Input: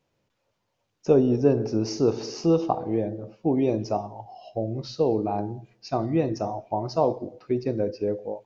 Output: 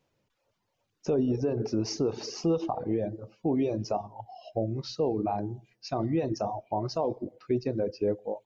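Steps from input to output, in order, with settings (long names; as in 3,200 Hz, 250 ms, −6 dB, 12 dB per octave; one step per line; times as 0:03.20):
brickwall limiter −18 dBFS, peak gain reduction 10.5 dB
reverb reduction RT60 0.74 s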